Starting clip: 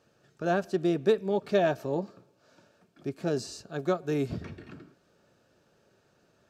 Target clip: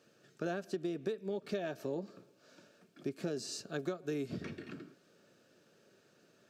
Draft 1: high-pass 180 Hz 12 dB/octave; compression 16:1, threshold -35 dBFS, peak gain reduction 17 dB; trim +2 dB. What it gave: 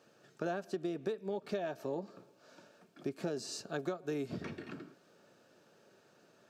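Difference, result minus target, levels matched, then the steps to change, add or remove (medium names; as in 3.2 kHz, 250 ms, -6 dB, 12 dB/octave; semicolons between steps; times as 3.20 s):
1 kHz band +3.5 dB
add after high-pass: peaking EQ 870 Hz -8 dB 0.95 oct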